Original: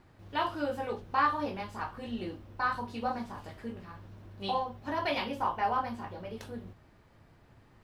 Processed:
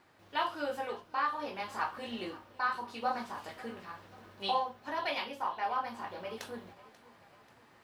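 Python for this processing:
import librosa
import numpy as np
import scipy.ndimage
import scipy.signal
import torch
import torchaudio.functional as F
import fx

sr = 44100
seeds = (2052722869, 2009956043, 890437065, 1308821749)

y = fx.highpass(x, sr, hz=680.0, slope=6)
y = fx.rider(y, sr, range_db=5, speed_s=0.5)
y = fx.echo_feedback(y, sr, ms=537, feedback_pct=49, wet_db=-20)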